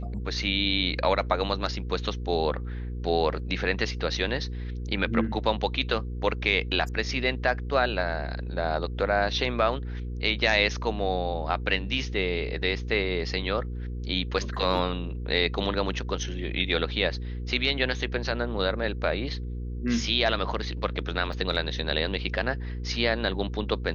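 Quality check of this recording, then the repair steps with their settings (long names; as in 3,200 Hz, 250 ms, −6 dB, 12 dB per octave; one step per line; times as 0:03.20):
mains hum 60 Hz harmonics 8 −33 dBFS
0:03.39: drop-out 3.2 ms
0:21.33: drop-out 2.7 ms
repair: hum removal 60 Hz, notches 8
repair the gap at 0:03.39, 3.2 ms
repair the gap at 0:21.33, 2.7 ms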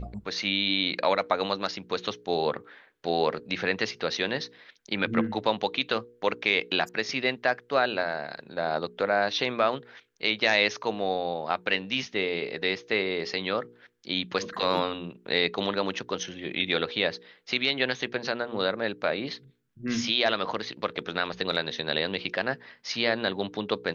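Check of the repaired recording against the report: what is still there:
none of them is left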